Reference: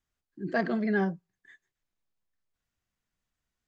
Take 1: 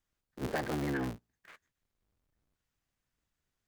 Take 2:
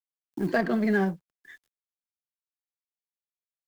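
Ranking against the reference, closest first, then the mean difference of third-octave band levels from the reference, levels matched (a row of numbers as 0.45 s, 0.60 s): 2, 1; 4.0 dB, 13.5 dB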